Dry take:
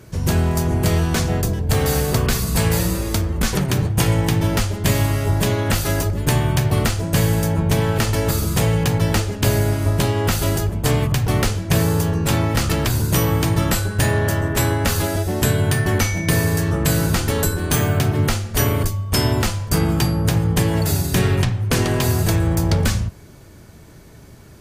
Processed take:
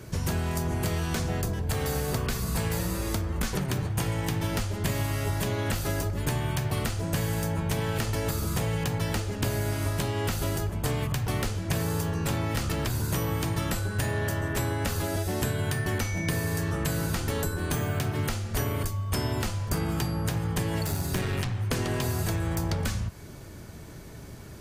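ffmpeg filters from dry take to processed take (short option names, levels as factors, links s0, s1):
-filter_complex "[0:a]asettb=1/sr,asplit=3[s0][s1][s2];[s0]atrim=end=20.854[s3];[s1]atrim=start=20.85:end=21.6,asetpts=PTS-STARTPTS,afade=t=in:d=0.004:c=qsin,afade=t=out:st=0.746:d=0.004:c=qsin,aeval=exprs='clip(val(0),-1,0.119)':c=same[s4];[s2]atrim=start=21.596[s5];[s3][s4]acrossfade=d=0.004:c1=hsin:c2=qsin[s6];[s6][s5]acrossfade=d=0.004:c1=qsin:c2=hsin,acrossover=split=820|1800[s7][s8][s9];[s7]acompressor=threshold=0.0398:ratio=4[s10];[s8]acompressor=threshold=0.00891:ratio=4[s11];[s9]acompressor=threshold=0.0141:ratio=4[s12];[s10][s11][s12]amix=inputs=3:normalize=0"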